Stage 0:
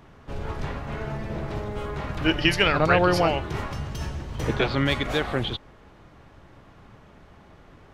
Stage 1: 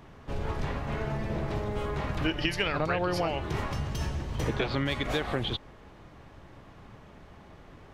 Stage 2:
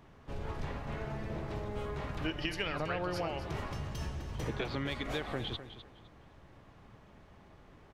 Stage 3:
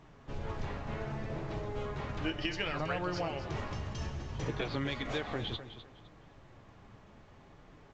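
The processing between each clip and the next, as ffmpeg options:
-af "equalizer=f=1.4k:w=7.4:g=-3,acompressor=threshold=-25dB:ratio=6"
-af "aecho=1:1:255|510|765:0.251|0.0628|0.0157,volume=-7dB"
-af "flanger=delay=6.2:depth=4.1:regen=-49:speed=0.65:shape=triangular,volume=4.5dB" -ar 16000 -c:a pcm_mulaw

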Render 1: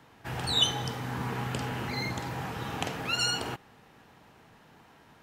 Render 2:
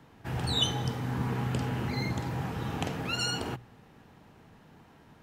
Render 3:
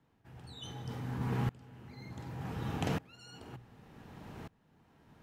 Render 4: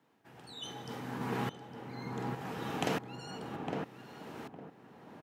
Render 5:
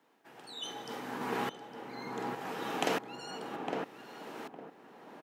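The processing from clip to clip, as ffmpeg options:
-af "lowshelf=f=390:g=9.5,bandreject=f=60:t=h:w=6,bandreject=f=120:t=h:w=6,volume=-3.5dB"
-af "areverse,acompressor=threshold=-39dB:ratio=6,areverse,lowshelf=f=320:g=3,aeval=exprs='val(0)*pow(10,-27*if(lt(mod(-0.67*n/s,1),2*abs(-0.67)/1000),1-mod(-0.67*n/s,1)/(2*abs(-0.67)/1000),(mod(-0.67*n/s,1)-2*abs(-0.67)/1000)/(1-2*abs(-0.67)/1000))/20)':c=same,volume=9dB"
-filter_complex "[0:a]highpass=250,asplit=2[a][b];[b]adelay=858,lowpass=f=1.2k:p=1,volume=-3dB,asplit=2[c][d];[d]adelay=858,lowpass=f=1.2k:p=1,volume=0.26,asplit=2[e][f];[f]adelay=858,lowpass=f=1.2k:p=1,volume=0.26,asplit=2[g][h];[h]adelay=858,lowpass=f=1.2k:p=1,volume=0.26[i];[c][e][g][i]amix=inputs=4:normalize=0[j];[a][j]amix=inputs=2:normalize=0,volume=4dB"
-af "highpass=290,volume=3dB"

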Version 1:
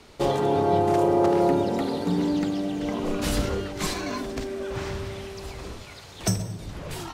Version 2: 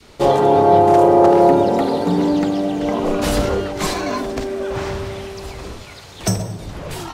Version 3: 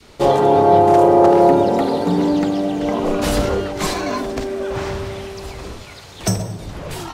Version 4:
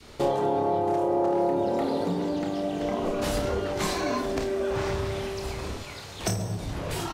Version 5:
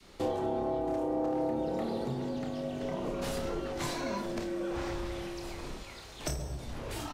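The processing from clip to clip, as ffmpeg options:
-af "acontrast=87,adynamicequalizer=threshold=0.0316:dfrequency=690:dqfactor=0.79:tfrequency=690:tqfactor=0.79:attack=5:release=100:ratio=0.375:range=3.5:mode=boostabove:tftype=bell,volume=-2dB"
-af anull
-filter_complex "[0:a]acompressor=threshold=-22dB:ratio=6,asplit=2[a][b];[b]aecho=0:1:29|54:0.473|0.251[c];[a][c]amix=inputs=2:normalize=0,volume=-3dB"
-af "afreqshift=-44,volume=-7dB"

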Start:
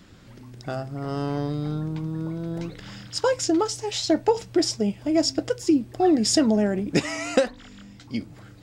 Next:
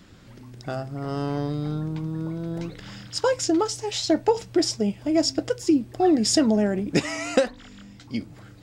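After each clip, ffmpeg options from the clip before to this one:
-af anull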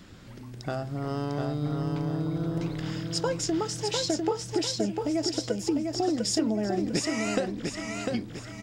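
-filter_complex "[0:a]acompressor=threshold=-29dB:ratio=3,asplit=2[a][b];[b]aecho=0:1:700|1400|2100|2800|3500:0.631|0.233|0.0864|0.032|0.0118[c];[a][c]amix=inputs=2:normalize=0,volume=1dB"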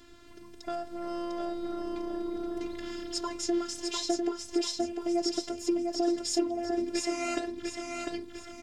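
-af "afftfilt=real='hypot(re,im)*cos(PI*b)':imag='0':win_size=512:overlap=0.75"

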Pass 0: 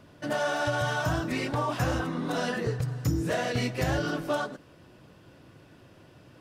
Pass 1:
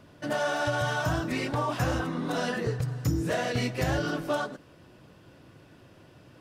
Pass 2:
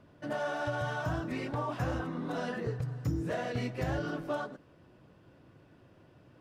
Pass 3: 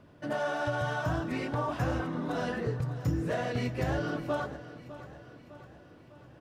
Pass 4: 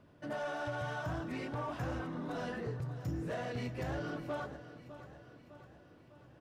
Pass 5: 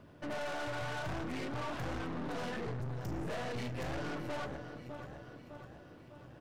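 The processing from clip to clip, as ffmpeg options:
-af anull
-af "highshelf=f=3k:g=-10,volume=-5dB"
-af "aecho=1:1:604|1208|1812|2416|3020:0.178|0.096|0.0519|0.028|0.0151,volume=2.5dB"
-af "asoftclip=type=tanh:threshold=-25dB,volume=-5.5dB"
-af "aeval=exprs='(tanh(178*val(0)+0.6)-tanh(0.6))/178':c=same,volume=8dB"

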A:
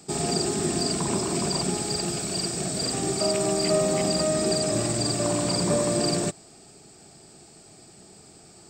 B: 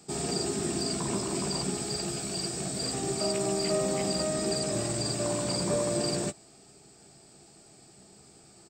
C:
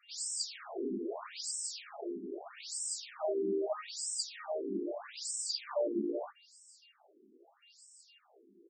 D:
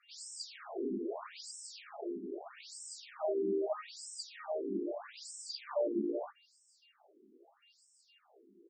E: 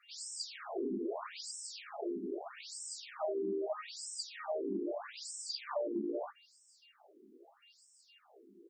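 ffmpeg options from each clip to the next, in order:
-filter_complex "[0:a]asplit=2[a][b];[b]adelay=15,volume=-8dB[c];[a][c]amix=inputs=2:normalize=0,volume=-5.5dB"
-af "aeval=exprs='val(0)+0.001*sin(2*PI*2800*n/s)':c=same,afftfilt=real='re*between(b*sr/1024,290*pow(7400/290,0.5+0.5*sin(2*PI*0.79*pts/sr))/1.41,290*pow(7400/290,0.5+0.5*sin(2*PI*0.79*pts/sr))*1.41)':imag='im*between(b*sr/1024,290*pow(7400/290,0.5+0.5*sin(2*PI*0.79*pts/sr))/1.41,290*pow(7400/290,0.5+0.5*sin(2*PI*0.79*pts/sr))*1.41)':win_size=1024:overlap=0.75"
-af "lowpass=f=2.4k:p=1"
-af "acompressor=threshold=-36dB:ratio=6,volume=3dB"

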